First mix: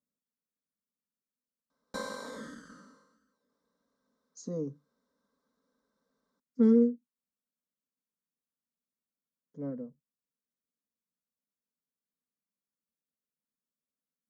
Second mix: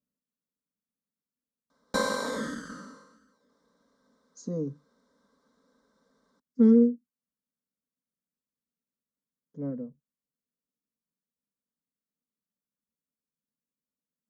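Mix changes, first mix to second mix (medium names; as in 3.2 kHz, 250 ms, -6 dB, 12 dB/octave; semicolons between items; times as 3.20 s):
speech: add bass shelf 340 Hz +6 dB; background +10.5 dB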